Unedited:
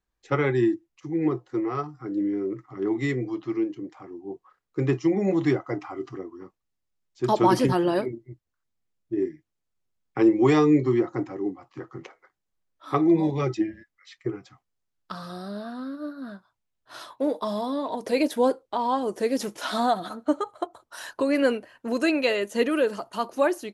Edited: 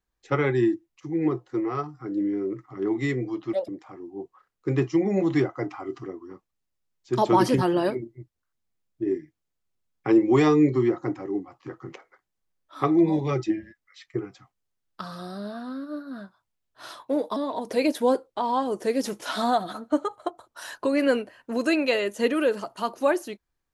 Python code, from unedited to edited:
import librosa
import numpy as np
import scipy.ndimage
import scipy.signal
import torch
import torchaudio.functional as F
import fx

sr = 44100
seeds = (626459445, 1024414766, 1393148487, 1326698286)

y = fx.edit(x, sr, fx.speed_span(start_s=3.53, length_s=0.26, speed=1.71),
    fx.cut(start_s=17.47, length_s=0.25), tone=tone)